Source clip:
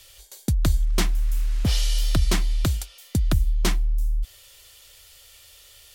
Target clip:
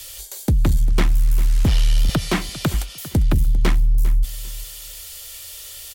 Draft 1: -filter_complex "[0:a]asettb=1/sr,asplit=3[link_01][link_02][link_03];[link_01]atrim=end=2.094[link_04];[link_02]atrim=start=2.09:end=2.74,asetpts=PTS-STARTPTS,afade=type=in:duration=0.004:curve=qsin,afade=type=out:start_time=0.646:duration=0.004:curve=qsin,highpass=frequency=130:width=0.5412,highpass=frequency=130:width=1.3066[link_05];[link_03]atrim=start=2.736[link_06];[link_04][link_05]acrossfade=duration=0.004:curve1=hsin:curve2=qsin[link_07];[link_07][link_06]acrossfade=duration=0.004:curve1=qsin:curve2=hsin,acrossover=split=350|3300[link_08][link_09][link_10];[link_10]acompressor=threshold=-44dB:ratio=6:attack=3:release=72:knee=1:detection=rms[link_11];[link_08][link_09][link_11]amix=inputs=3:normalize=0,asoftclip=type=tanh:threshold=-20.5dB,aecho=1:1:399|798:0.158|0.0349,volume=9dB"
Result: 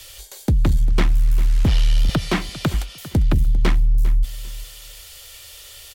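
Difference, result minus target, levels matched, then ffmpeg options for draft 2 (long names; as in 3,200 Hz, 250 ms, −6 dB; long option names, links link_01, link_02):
8,000 Hz band −5.0 dB
-filter_complex "[0:a]asettb=1/sr,asplit=3[link_01][link_02][link_03];[link_01]atrim=end=2.094[link_04];[link_02]atrim=start=2.09:end=2.74,asetpts=PTS-STARTPTS,afade=type=in:duration=0.004:curve=qsin,afade=type=out:start_time=0.646:duration=0.004:curve=qsin,highpass=frequency=130:width=0.5412,highpass=frequency=130:width=1.3066[link_05];[link_03]atrim=start=2.736[link_06];[link_04][link_05]acrossfade=duration=0.004:curve1=hsin:curve2=qsin[link_07];[link_07][link_06]acrossfade=duration=0.004:curve1=qsin:curve2=hsin,acrossover=split=350|3300[link_08][link_09][link_10];[link_10]acompressor=threshold=-44dB:ratio=6:attack=3:release=72:knee=1:detection=rms,highshelf=frequency=5400:gain=8[link_11];[link_08][link_09][link_11]amix=inputs=3:normalize=0,asoftclip=type=tanh:threshold=-20.5dB,aecho=1:1:399|798:0.158|0.0349,volume=9dB"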